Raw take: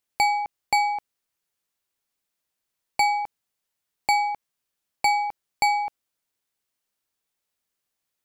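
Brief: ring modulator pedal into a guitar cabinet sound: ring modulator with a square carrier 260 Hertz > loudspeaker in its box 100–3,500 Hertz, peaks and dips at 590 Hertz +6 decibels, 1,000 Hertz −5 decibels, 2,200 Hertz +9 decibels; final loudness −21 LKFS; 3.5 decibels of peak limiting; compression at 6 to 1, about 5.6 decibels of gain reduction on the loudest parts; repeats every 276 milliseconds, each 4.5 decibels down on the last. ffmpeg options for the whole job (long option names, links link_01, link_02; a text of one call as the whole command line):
ffmpeg -i in.wav -af "acompressor=threshold=-22dB:ratio=6,alimiter=limit=-14dB:level=0:latency=1,aecho=1:1:276|552|828|1104|1380|1656|1932|2208|2484:0.596|0.357|0.214|0.129|0.0772|0.0463|0.0278|0.0167|0.01,aeval=exprs='val(0)*sgn(sin(2*PI*260*n/s))':channel_layout=same,highpass=100,equalizer=frequency=590:width_type=q:width=4:gain=6,equalizer=frequency=1000:width_type=q:width=4:gain=-5,equalizer=frequency=2200:width_type=q:width=4:gain=9,lowpass=frequency=3500:width=0.5412,lowpass=frequency=3500:width=1.3066,volume=6.5dB" out.wav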